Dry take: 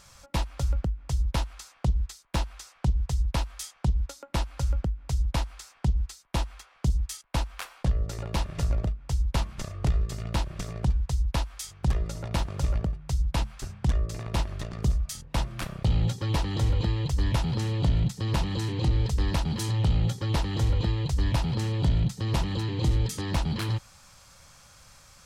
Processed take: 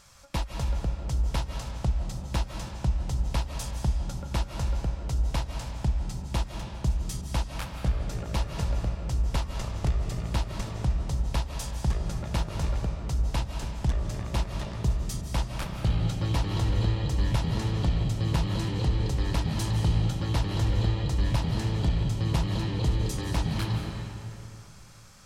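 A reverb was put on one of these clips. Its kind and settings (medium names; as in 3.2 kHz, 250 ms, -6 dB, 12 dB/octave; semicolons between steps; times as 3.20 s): algorithmic reverb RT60 2.7 s, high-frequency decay 0.65×, pre-delay 120 ms, DRR 3 dB; trim -2 dB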